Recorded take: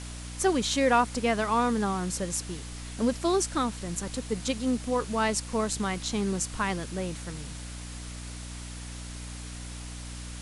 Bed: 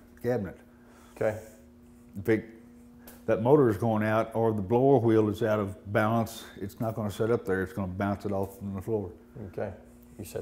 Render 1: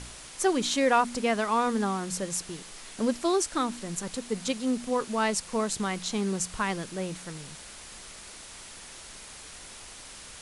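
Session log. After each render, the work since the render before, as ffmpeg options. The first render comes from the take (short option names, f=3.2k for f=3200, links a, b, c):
-af "bandreject=f=60:t=h:w=4,bandreject=f=120:t=h:w=4,bandreject=f=180:t=h:w=4,bandreject=f=240:t=h:w=4,bandreject=f=300:t=h:w=4"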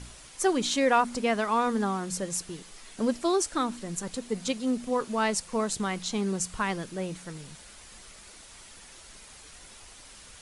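-af "afftdn=nr=6:nf=-46"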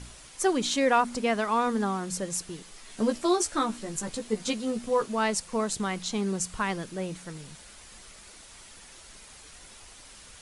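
-filter_complex "[0:a]asettb=1/sr,asplit=3[a][b][c];[a]atrim=end=2.884[d];[b]atrim=start=2.88:end=5.06,asetpts=PTS-STARTPTS,afade=t=in:d=0.004:c=qsin,afade=t=out:st=2.176:d=0.004:c=qsin,asplit=2[e][f];[f]adelay=14,volume=-4dB[g];[e][g]amix=inputs=2:normalize=0,atrim=end_sample=96138[h];[c]atrim=start=5.056[i];[d][h]acrossfade=d=0.004:c1=hsin:c2=qsin[j];[j][i]acrossfade=d=0.004:c1=qsin:c2=hsin"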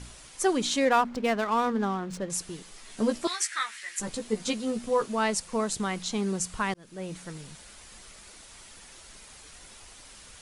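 -filter_complex "[0:a]asettb=1/sr,asplit=3[a][b][c];[a]atrim=end=0.854[d];[b]atrim=start=0.85:end=2.3,asetpts=PTS-STARTPTS,afade=t=in:d=0.004:c=qsin,afade=t=out:st=1.446:d=0.004:c=qsin,adynamicsmooth=sensitivity=6.5:basefreq=1.7k[e];[c]atrim=start=2.296[f];[d][e]acrossfade=d=0.004:c1=hsin:c2=qsin[g];[g][f]acrossfade=d=0.004:c1=qsin:c2=hsin,asettb=1/sr,asplit=3[h][i][j];[h]atrim=end=3.274[k];[i]atrim=start=3.27:end=4,asetpts=PTS-STARTPTS,afade=t=in:d=0.004:c=qsin,afade=t=out:st=0.726:d=0.004:c=qsin,highpass=f=1.9k:t=q:w=4.8[l];[j]atrim=start=3.996[m];[k][l]acrossfade=d=0.004:c1=hsin:c2=qsin[n];[n][m]acrossfade=d=0.004:c1=qsin:c2=hsin,asplit=2[o][p];[o]atrim=end=6.74,asetpts=PTS-STARTPTS,afade=t=out:st=6.736:d=0.004:c=hsin[q];[p]atrim=start=6.74,asetpts=PTS-STARTPTS,afade=t=in:d=0.44[r];[q][r]concat=n=2:v=0:a=1"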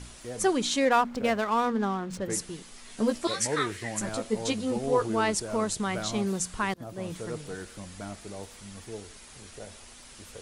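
-filter_complex "[1:a]volume=-10.5dB[a];[0:a][a]amix=inputs=2:normalize=0"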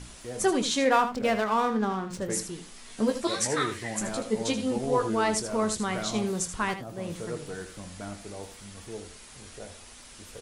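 -filter_complex "[0:a]asplit=2[a][b];[b]adelay=23,volume=-11.5dB[c];[a][c]amix=inputs=2:normalize=0,aecho=1:1:79:0.299"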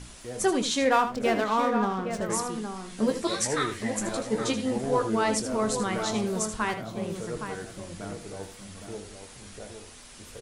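-filter_complex "[0:a]asplit=2[a][b];[b]adelay=816.3,volume=-7dB,highshelf=f=4k:g=-18.4[c];[a][c]amix=inputs=2:normalize=0"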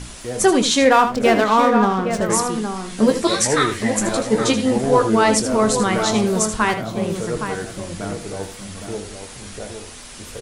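-af "volume=10dB,alimiter=limit=-3dB:level=0:latency=1"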